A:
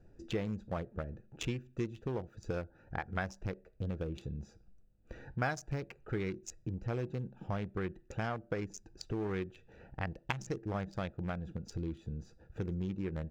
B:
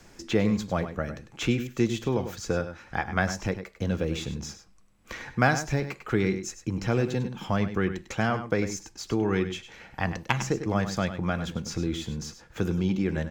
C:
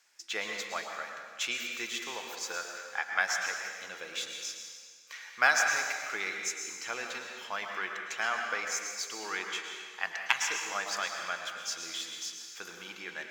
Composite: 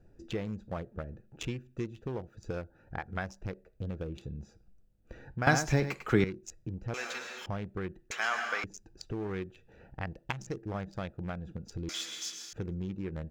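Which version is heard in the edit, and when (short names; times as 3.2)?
A
5.47–6.24 from B
6.94–7.46 from C
8.11–8.64 from C
11.89–12.53 from C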